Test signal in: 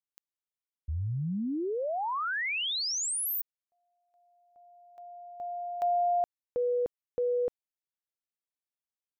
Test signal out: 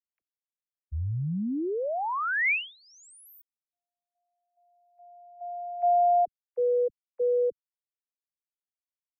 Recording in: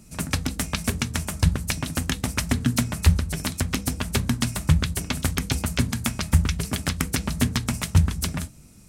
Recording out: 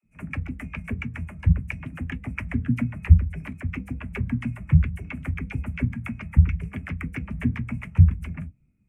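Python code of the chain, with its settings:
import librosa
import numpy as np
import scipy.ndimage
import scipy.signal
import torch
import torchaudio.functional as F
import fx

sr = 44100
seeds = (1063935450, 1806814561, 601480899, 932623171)

y = fx.high_shelf_res(x, sr, hz=3100.0, db=-9.5, q=3.0)
y = fx.dispersion(y, sr, late='lows', ms=41.0, hz=440.0)
y = fx.spectral_expand(y, sr, expansion=1.5)
y = F.gain(torch.from_numpy(y), 3.5).numpy()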